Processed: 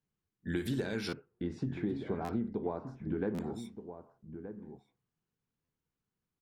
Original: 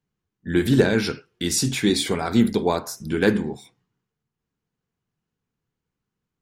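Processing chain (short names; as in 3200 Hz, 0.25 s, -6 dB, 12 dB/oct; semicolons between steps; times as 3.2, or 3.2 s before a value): 1.13–3.4 LPF 1000 Hz 12 dB/oct; compressor 6:1, threshold -24 dBFS, peak gain reduction 13 dB; outdoor echo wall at 210 m, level -10 dB; stuck buffer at 1.08/2.24/3.34/5.64, samples 512, times 3; gain -7 dB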